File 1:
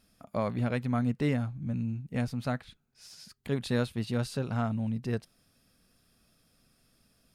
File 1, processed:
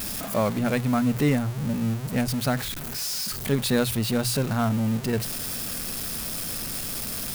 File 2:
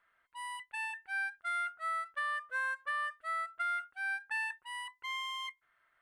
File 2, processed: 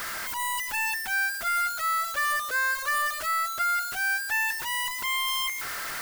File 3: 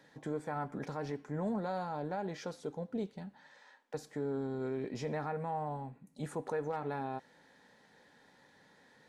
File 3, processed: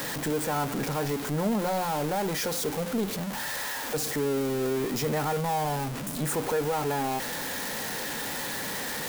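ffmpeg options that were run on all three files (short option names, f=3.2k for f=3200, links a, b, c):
-af "aeval=exprs='val(0)+0.5*0.0178*sgn(val(0))':c=same,highshelf=f=8.7k:g=10.5,bandreject=f=60:t=h:w=6,bandreject=f=120:t=h:w=6,bandreject=f=180:t=h:w=6,volume=5.5dB"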